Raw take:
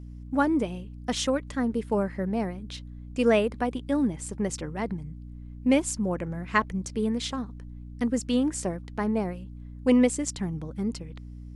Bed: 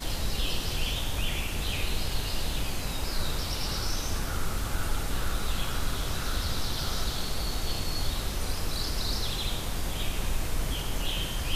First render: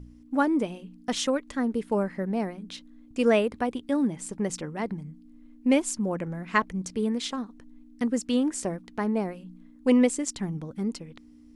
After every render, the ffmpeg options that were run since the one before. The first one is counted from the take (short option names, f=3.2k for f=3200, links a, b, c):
-af "bandreject=f=60:t=h:w=4,bandreject=f=120:t=h:w=4,bandreject=f=180:t=h:w=4"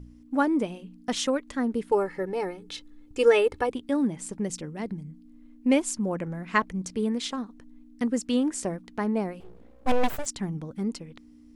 -filter_complex "[0:a]asettb=1/sr,asplit=3[a][b][c];[a]atrim=end=1.914[d];[b]atrim=start=1.91:end=3.7,asetpts=PTS-STARTPTS,afade=t=in:d=0.004:c=qsin,afade=t=out:st=1.786:d=0.004:c=qsin,aecho=1:1:2.3:0.9,atrim=end_sample=78939[e];[c]atrim=start=3.696[f];[d][e]acrossfade=d=0.004:c1=hsin:c2=qsin[g];[g][f]acrossfade=d=0.004:c1=qsin:c2=hsin,asettb=1/sr,asplit=3[h][i][j];[h]atrim=end=4.394[k];[i]atrim=start=4.39:end=5.1,asetpts=PTS-STARTPTS,afade=t=in:d=0.004:c=qsin,afade=t=out:st=0.706:d=0.004:c=qsin,equalizer=f=1.1k:w=0.63:g=-7.5[l];[j]atrim=start=5.096[m];[k][l]acrossfade=d=0.004:c1=hsin:c2=qsin[n];[n][m]acrossfade=d=0.004:c1=qsin:c2=hsin,asettb=1/sr,asplit=3[o][p][q];[o]atrim=end=9.404[r];[p]atrim=start=9.4:end=10.26,asetpts=PTS-STARTPTS,afade=t=in:d=0.004:c=qsin,afade=t=out:st=0.856:d=0.004:c=qsin,aeval=exprs='abs(val(0))':c=same[s];[q]atrim=start=10.256[t];[r][s]acrossfade=d=0.004:c1=hsin:c2=qsin[u];[u][t]acrossfade=d=0.004:c1=qsin:c2=hsin"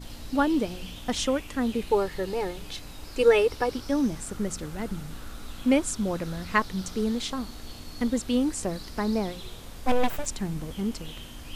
-filter_complex "[1:a]volume=-11dB[a];[0:a][a]amix=inputs=2:normalize=0"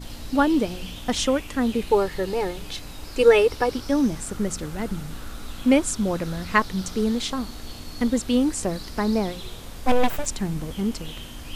-af "volume=4dB"